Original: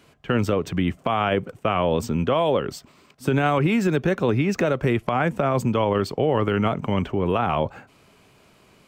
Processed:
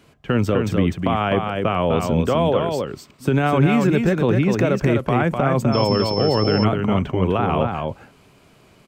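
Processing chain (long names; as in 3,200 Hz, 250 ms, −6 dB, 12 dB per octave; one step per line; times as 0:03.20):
low-shelf EQ 380 Hz +4 dB
single-tap delay 252 ms −4.5 dB
0:05.72–0:06.63: steady tone 5,300 Hz −27 dBFS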